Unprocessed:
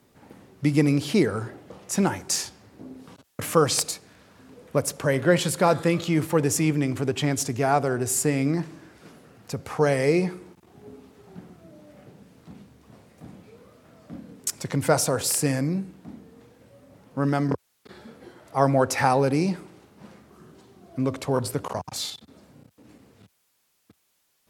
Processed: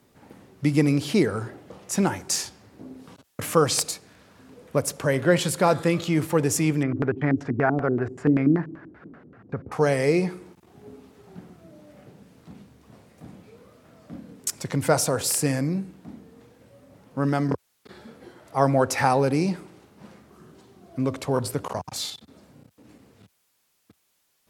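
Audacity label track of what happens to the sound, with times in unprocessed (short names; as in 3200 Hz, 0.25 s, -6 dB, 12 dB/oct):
6.830000	9.720000	LFO low-pass square 5.2 Hz 300–1600 Hz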